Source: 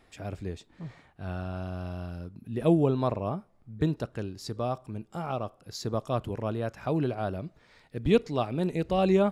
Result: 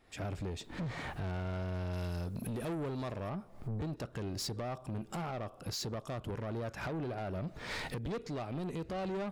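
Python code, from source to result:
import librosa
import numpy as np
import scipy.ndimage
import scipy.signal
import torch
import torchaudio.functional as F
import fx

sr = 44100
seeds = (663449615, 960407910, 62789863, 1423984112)

y = fx.recorder_agc(x, sr, target_db=-17.5, rise_db_per_s=69.0, max_gain_db=30)
y = fx.high_shelf(y, sr, hz=4000.0, db=11.5, at=(1.93, 3.3))
y = 10.0 ** (-26.5 / 20.0) * np.tanh(y / 10.0 ** (-26.5 / 20.0))
y = y * 10.0 ** (-7.5 / 20.0)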